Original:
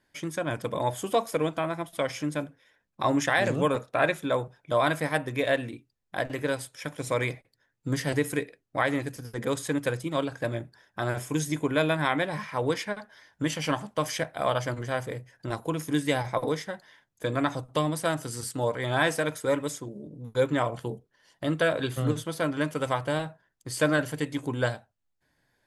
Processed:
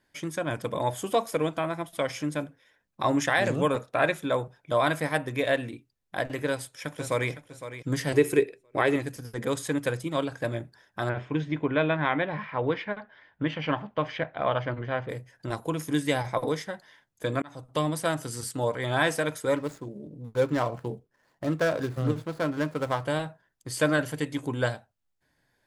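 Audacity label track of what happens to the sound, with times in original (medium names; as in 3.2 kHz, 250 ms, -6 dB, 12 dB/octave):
6.470000	7.310000	echo throw 510 ms, feedback 20%, level -12 dB
8.140000	8.960000	small resonant body resonances 390/2600 Hz, height 15 dB, ringing for 55 ms
11.090000	15.090000	low-pass 3.2 kHz 24 dB/octave
17.420000	17.830000	fade in
19.560000	23.040000	median filter over 15 samples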